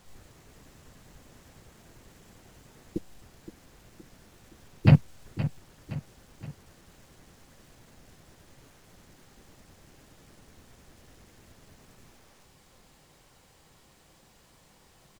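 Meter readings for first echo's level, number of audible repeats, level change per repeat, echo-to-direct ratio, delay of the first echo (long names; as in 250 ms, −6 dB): −13.0 dB, 3, −6.0 dB, −12.0 dB, 519 ms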